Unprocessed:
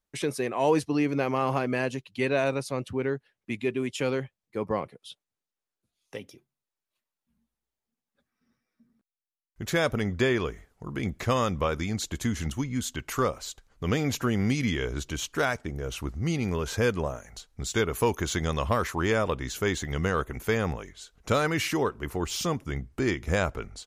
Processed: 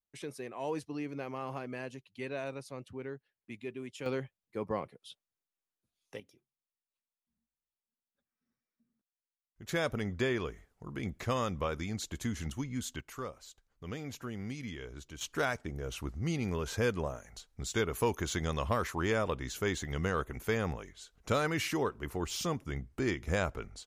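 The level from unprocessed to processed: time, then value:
−13 dB
from 0:04.06 −6 dB
from 0:06.20 −14 dB
from 0:09.69 −7 dB
from 0:13.01 −14.5 dB
from 0:15.21 −5.5 dB

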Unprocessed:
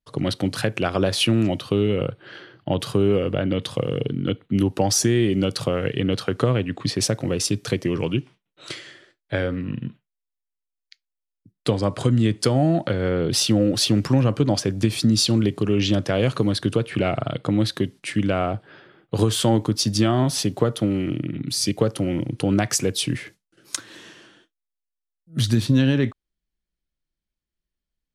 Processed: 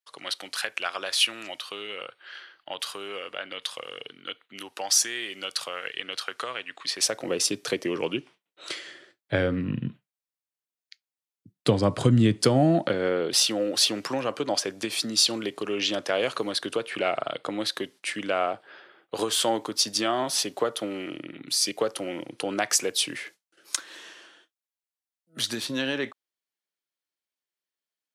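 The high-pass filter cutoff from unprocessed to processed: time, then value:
0:06.86 1,200 Hz
0:07.30 380 Hz
0:08.79 380 Hz
0:09.34 91 Hz
0:12.19 91 Hz
0:12.83 210 Hz
0:13.36 530 Hz

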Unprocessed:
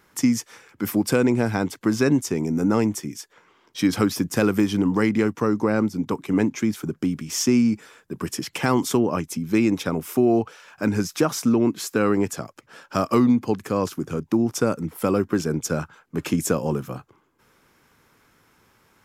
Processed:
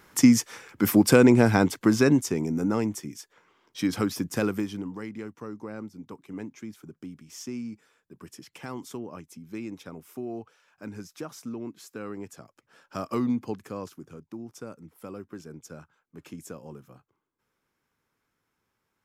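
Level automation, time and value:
0:01.59 +3 dB
0:02.76 −6 dB
0:04.44 −6 dB
0:04.99 −17 dB
0:12.20 −17 dB
0:13.37 −8 dB
0:14.28 −19 dB

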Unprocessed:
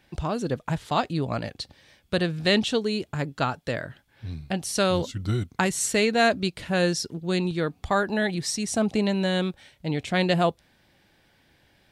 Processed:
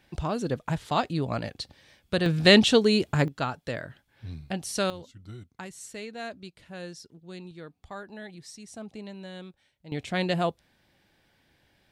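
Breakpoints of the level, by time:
−1.5 dB
from 0:02.26 +5 dB
from 0:03.28 −4 dB
from 0:04.90 −17 dB
from 0:09.92 −4.5 dB

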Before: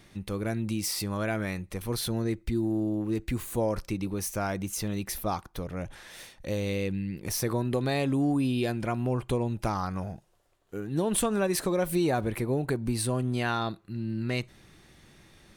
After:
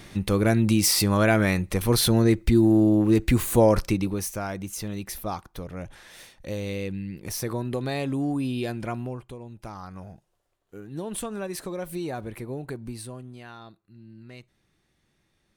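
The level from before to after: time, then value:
0:03.80 +10 dB
0:04.42 −1 dB
0:08.96 −1 dB
0:09.35 −13 dB
0:10.12 −6 dB
0:12.83 −6 dB
0:13.40 −15 dB

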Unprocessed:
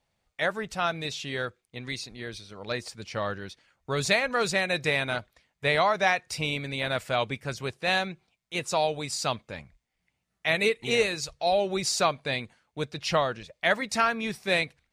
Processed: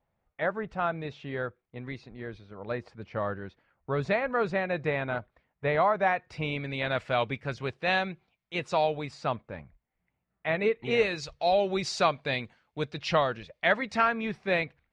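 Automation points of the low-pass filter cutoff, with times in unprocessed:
0:06.07 1,500 Hz
0:06.84 3,100 Hz
0:08.79 3,100 Hz
0:09.36 1,600 Hz
0:10.76 1,600 Hz
0:11.21 4,000 Hz
0:13.25 4,000 Hz
0:14.37 2,200 Hz

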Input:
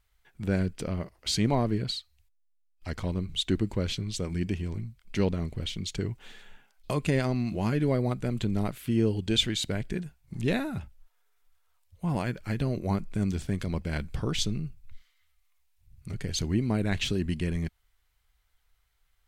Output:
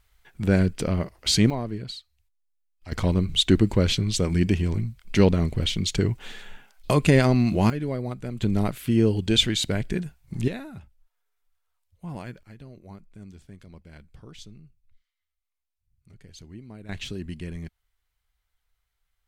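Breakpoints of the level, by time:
+7 dB
from 0:01.50 −4 dB
from 0:02.92 +8.5 dB
from 0:07.70 −3 dB
from 0:08.42 +5 dB
from 0:10.48 −7 dB
from 0:12.43 −16 dB
from 0:16.89 −5.5 dB

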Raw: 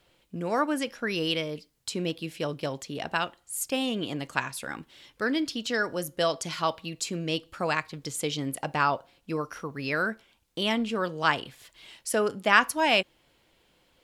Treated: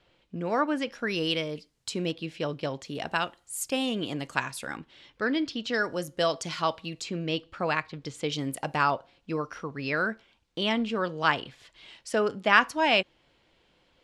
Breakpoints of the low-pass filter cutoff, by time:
4,500 Hz
from 0:00.92 8,700 Hz
from 0:02.13 5,200 Hz
from 0:02.85 11,000 Hz
from 0:04.77 4,400 Hz
from 0:05.73 7,800 Hz
from 0:07.02 4,200 Hz
from 0:08.32 11,000 Hz
from 0:08.90 5,400 Hz

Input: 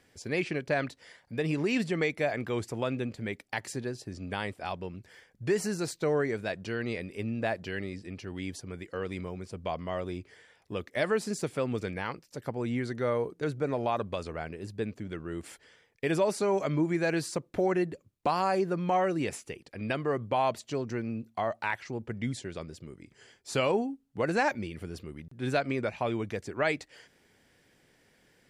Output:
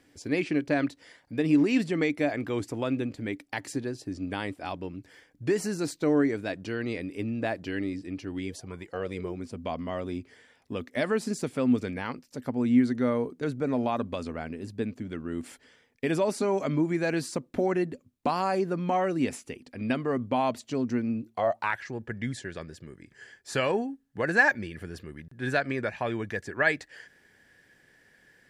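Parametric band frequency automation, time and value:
parametric band +14.5 dB 0.23 octaves
0:08.38 290 Hz
0:08.75 1,100 Hz
0:09.46 250 Hz
0:21.18 250 Hz
0:21.79 1,700 Hz

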